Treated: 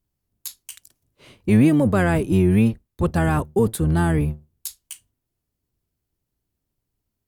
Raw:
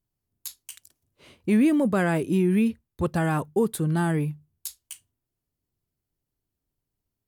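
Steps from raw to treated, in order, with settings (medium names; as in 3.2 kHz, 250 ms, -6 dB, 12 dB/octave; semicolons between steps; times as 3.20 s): octave divider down 1 oct, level -3 dB; trim +3.5 dB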